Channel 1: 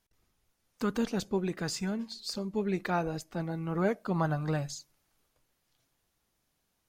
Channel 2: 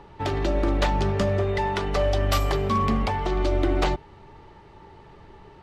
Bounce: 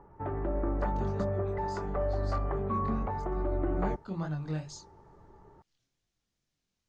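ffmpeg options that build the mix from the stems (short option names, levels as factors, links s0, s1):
-filter_complex "[0:a]lowpass=f=7300:w=0.5412,lowpass=f=7300:w=1.3066,equalizer=f=900:w=0.58:g=-8,flanger=delay=19.5:depth=6.6:speed=2.3,volume=0.944,afade=t=in:st=3.5:d=0.68:silence=0.266073[s0];[1:a]lowpass=f=1500:w=0.5412,lowpass=f=1500:w=1.3066,volume=0.398[s1];[s0][s1]amix=inputs=2:normalize=0"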